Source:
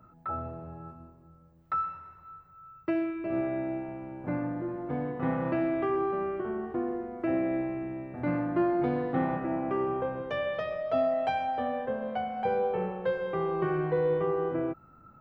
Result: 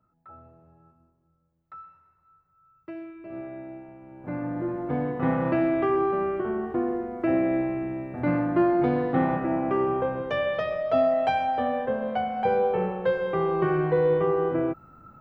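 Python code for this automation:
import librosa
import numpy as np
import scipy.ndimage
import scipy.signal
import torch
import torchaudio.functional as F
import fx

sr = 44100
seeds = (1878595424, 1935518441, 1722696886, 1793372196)

y = fx.gain(x, sr, db=fx.line((2.17, -14.0), (3.42, -7.0), (4.0, -7.0), (4.64, 5.0)))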